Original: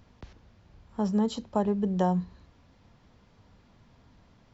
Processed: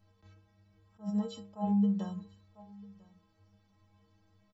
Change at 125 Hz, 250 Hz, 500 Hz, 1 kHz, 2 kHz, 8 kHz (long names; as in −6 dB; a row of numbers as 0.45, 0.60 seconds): −5.0 dB, −3.0 dB, −14.0 dB, −10.5 dB, below −10 dB, can't be measured